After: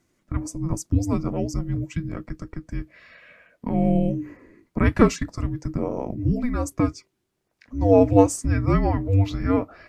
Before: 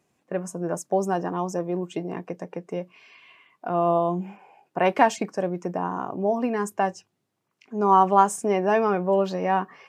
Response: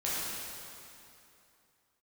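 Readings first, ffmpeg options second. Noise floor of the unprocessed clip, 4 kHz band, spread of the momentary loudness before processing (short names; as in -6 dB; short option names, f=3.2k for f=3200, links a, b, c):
-77 dBFS, -0.5 dB, 15 LU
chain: -af "asubboost=boost=5.5:cutoff=65,afreqshift=-490,volume=2.5dB"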